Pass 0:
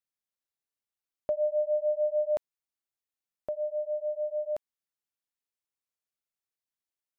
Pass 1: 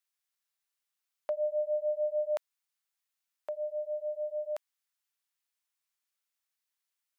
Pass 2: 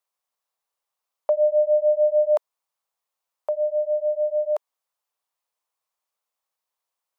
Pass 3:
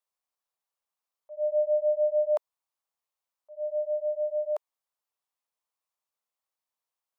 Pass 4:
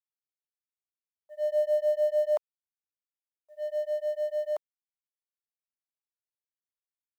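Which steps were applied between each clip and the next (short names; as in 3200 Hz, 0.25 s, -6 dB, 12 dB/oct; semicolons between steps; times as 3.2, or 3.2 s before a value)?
HPF 1000 Hz 12 dB/oct; gain +6 dB
band shelf 720 Hz +12 dB
auto swell 0.225 s; gain -6 dB
G.711 law mismatch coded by A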